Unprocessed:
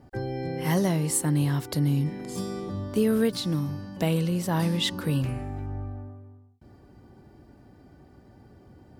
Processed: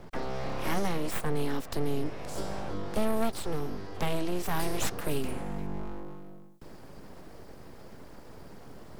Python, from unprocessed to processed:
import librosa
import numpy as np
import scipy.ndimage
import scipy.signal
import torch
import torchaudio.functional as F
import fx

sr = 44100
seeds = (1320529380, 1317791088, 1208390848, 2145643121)

y = fx.high_shelf(x, sr, hz=4900.0, db=fx.steps((0.0, -3.5), (4.44, 8.0)))
y = np.abs(y)
y = fx.band_squash(y, sr, depth_pct=40)
y = y * librosa.db_to_amplitude(-1.5)